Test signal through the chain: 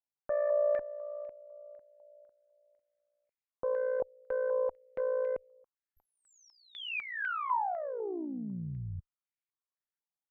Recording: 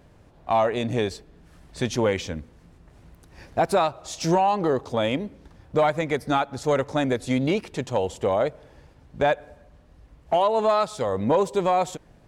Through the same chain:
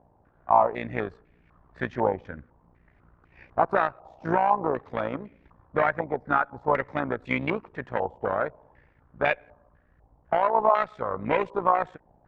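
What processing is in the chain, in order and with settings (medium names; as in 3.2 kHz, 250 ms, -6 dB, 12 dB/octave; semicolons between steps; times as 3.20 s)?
Chebyshev shaper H 3 -15 dB, 6 -37 dB, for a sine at -11.5 dBFS; AM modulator 59 Hz, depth 50%; step-sequenced low-pass 4 Hz 840–2300 Hz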